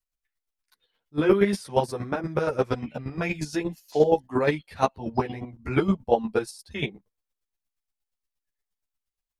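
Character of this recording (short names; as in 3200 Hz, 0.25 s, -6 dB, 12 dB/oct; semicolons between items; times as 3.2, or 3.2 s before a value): chopped level 8.5 Hz, depth 65%, duty 20%; a shimmering, thickened sound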